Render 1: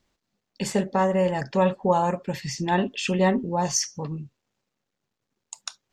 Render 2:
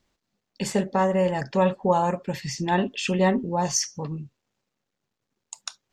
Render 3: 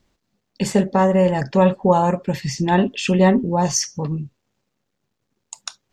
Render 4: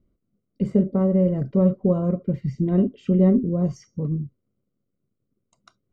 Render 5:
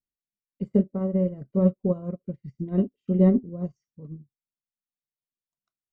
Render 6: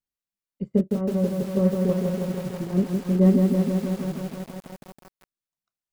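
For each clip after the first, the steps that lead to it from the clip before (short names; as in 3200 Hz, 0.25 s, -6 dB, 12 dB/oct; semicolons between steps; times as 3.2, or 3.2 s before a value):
nothing audible
low shelf 450 Hz +5 dB; gain +3.5 dB
running mean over 51 samples
upward expander 2.5:1, over -36 dBFS
lo-fi delay 0.162 s, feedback 80%, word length 7-bit, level -4 dB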